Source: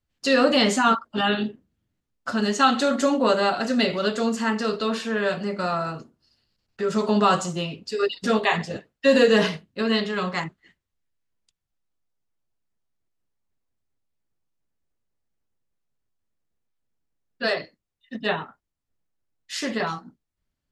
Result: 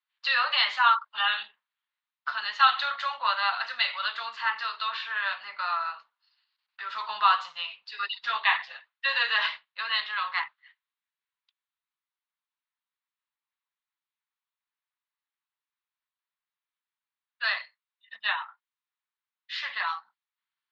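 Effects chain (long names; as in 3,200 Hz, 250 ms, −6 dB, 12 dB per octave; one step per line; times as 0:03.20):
elliptic band-pass filter 970–4,000 Hz, stop band 50 dB
level +1 dB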